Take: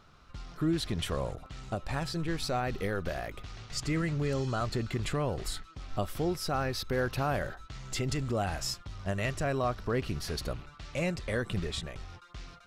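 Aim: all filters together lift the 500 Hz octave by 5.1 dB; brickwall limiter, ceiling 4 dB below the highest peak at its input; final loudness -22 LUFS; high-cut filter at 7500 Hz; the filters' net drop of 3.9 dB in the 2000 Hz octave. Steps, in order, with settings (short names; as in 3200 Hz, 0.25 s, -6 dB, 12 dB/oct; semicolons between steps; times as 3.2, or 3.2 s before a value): LPF 7500 Hz; bell 500 Hz +6.5 dB; bell 2000 Hz -5.5 dB; gain +10.5 dB; limiter -10.5 dBFS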